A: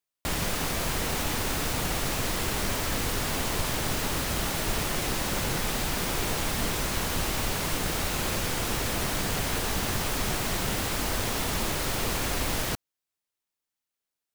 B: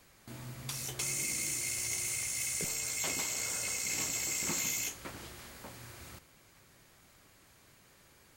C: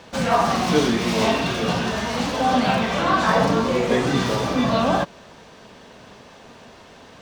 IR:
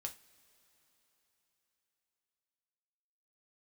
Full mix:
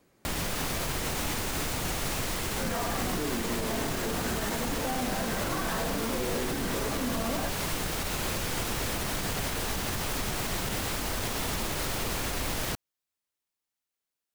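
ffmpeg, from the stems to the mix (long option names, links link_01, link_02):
-filter_complex "[0:a]volume=-1dB[link_01];[1:a]volume=-9.5dB[link_02];[2:a]lowpass=frequency=1800:width_type=q:width=2.8,adelay=2450,volume=-16dB[link_03];[link_02][link_03]amix=inputs=2:normalize=0,equalizer=frequency=320:width_type=o:width=2.7:gain=13.5,alimiter=limit=-21.5dB:level=0:latency=1,volume=0dB[link_04];[link_01][link_04]amix=inputs=2:normalize=0,alimiter=limit=-21dB:level=0:latency=1:release=62"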